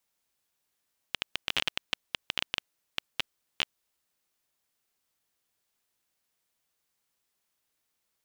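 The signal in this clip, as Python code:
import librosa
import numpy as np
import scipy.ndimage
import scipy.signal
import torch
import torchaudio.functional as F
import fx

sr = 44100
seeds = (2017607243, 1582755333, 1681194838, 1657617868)

y = fx.geiger_clicks(sr, seeds[0], length_s=2.5, per_s=11.0, level_db=-9.5)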